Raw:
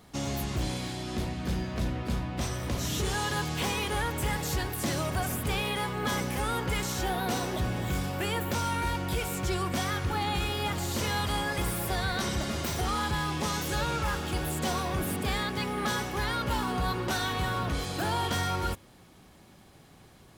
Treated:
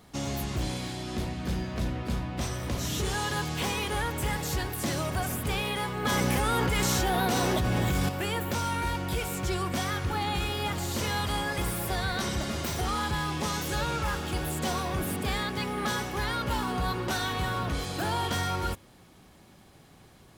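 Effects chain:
0:06.05–0:08.09: envelope flattener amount 100%

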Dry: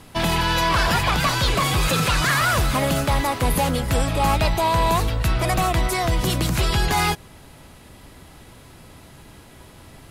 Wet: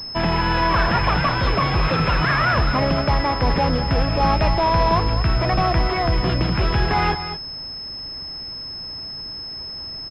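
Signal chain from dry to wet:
single-tap delay 222 ms −10.5 dB
switching amplifier with a slow clock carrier 5,200 Hz
level +1.5 dB

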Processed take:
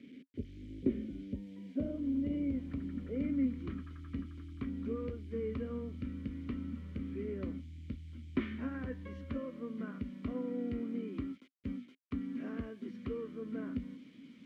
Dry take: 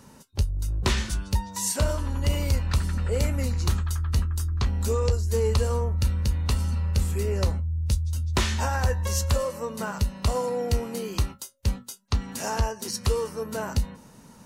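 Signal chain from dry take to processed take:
low-pass filter sweep 460 Hz → 1,100 Hz, 0:00.53–0:03.70
bit reduction 9 bits
formant filter i
level +6 dB

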